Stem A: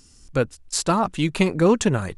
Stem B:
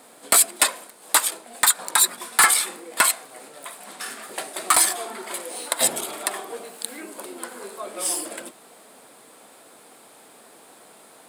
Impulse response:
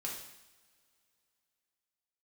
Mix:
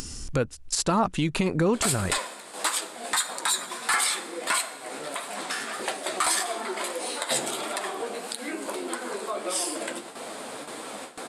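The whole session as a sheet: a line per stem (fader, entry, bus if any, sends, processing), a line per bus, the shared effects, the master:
+1.5 dB, 0.00 s, no send, compressor 4:1, threshold -19 dBFS, peak gain reduction 7 dB
+3.0 dB, 1.50 s, send -12.5 dB, LPF 7800 Hz 12 dB/oct; gate with hold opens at -40 dBFS; flange 1.6 Hz, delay 7 ms, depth 9.1 ms, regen +46%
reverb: on, pre-delay 3 ms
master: upward compressor, threshold -25 dBFS; limiter -14 dBFS, peak gain reduction 10 dB

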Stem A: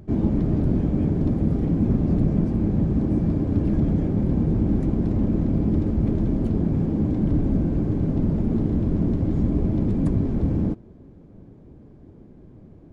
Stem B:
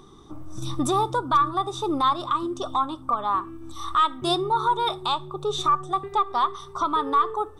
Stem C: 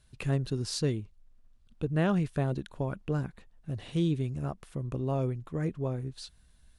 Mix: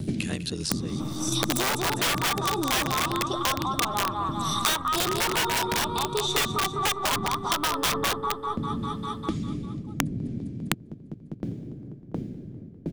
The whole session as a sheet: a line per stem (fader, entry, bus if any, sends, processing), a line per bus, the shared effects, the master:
-5.5 dB, 0.00 s, bus A, no send, echo send -20 dB, limiter -15 dBFS, peak gain reduction 6.5 dB; graphic EQ 125/250/1000 Hz +10/+5/-12 dB; dB-ramp tremolo decaying 1.4 Hz, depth 39 dB
-3.5 dB, 0.70 s, no bus, no send, echo send -4 dB, dry
-7.5 dB, 0.00 s, bus A, no send, echo send -20 dB, ring modulator 43 Hz
bus A: 0.0 dB, compressor 8:1, threshold -29 dBFS, peak gain reduction 10 dB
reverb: off
echo: feedback echo 0.2 s, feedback 57%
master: low shelf 120 Hz -3.5 dB; wrapped overs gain 19 dB; three-band squash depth 100%

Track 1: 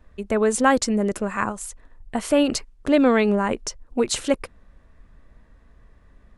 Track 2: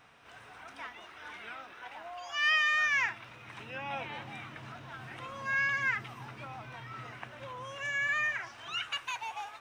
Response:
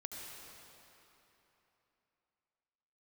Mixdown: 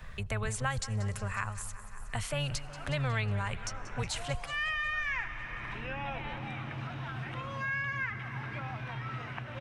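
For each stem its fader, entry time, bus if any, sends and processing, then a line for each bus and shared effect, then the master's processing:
-2.5 dB, 0.00 s, send -19 dB, echo send -17.5 dB, octaver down 1 oct, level 0 dB; passive tone stack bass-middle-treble 10-0-10
-6.5 dB, 2.15 s, send -4.5 dB, no echo send, high shelf 5300 Hz -10 dB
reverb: on, RT60 3.3 s, pre-delay 66 ms
echo: feedback echo 0.182 s, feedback 55%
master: tone controls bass +6 dB, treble -6 dB; three-band squash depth 70%

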